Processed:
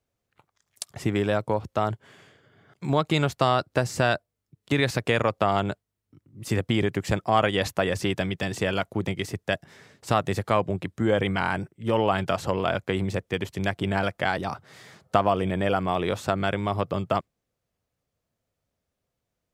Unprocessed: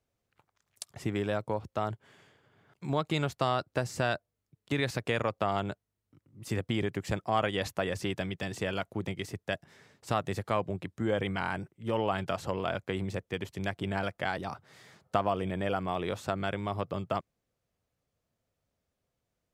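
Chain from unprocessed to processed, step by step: spectral noise reduction 6 dB; gain +7 dB

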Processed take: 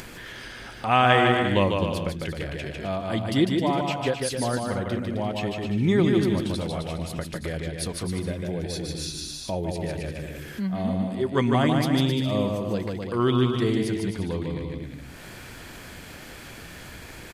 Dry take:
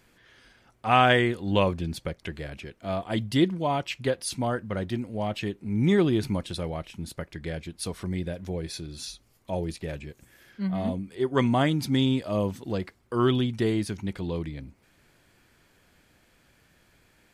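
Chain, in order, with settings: bouncing-ball echo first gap 0.15 s, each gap 0.75×, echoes 5; upward compressor, threshold -25 dBFS

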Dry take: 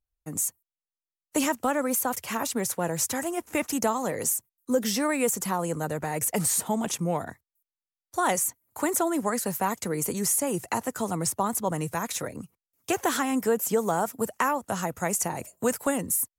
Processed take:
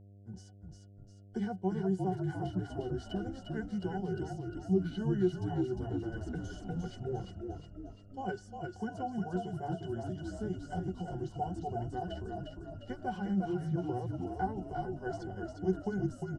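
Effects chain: delay-line pitch shifter -5 st; octave resonator F#, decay 0.1 s; frequency-shifting echo 0.353 s, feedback 53%, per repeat -41 Hz, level -4 dB; buzz 100 Hz, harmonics 7, -55 dBFS -9 dB/oct

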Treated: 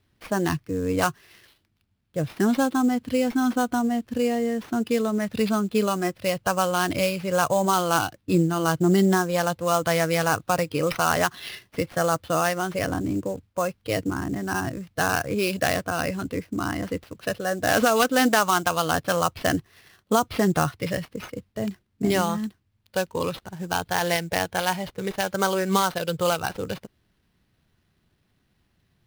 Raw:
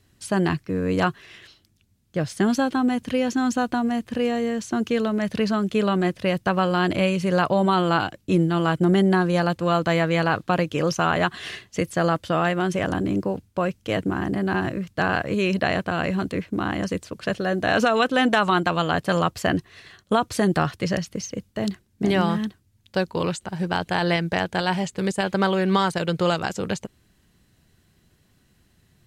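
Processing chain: sample-rate reducer 7500 Hz, jitter 20%; spectral noise reduction 7 dB

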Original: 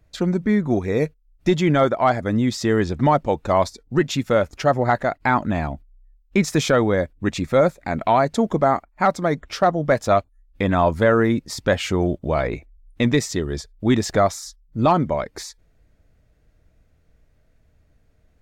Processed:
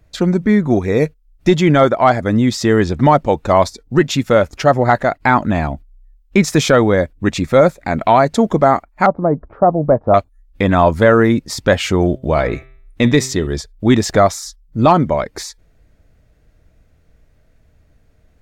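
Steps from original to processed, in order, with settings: 9.06–10.14 LPF 1000 Hz 24 dB/oct; 12.12–13.47 de-hum 130.6 Hz, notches 30; gain +6 dB

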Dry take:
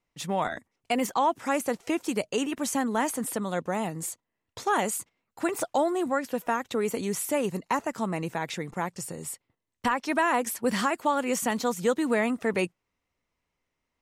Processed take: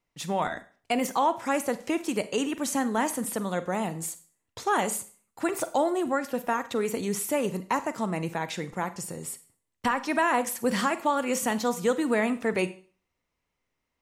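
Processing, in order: Schroeder reverb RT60 0.41 s, combs from 33 ms, DRR 12.5 dB

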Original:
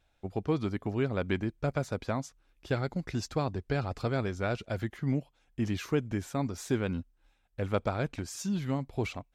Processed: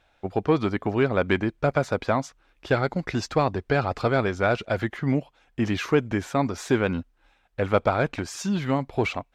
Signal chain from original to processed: overdrive pedal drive 10 dB, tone 2000 Hz, clips at -14.5 dBFS; gain +8.5 dB

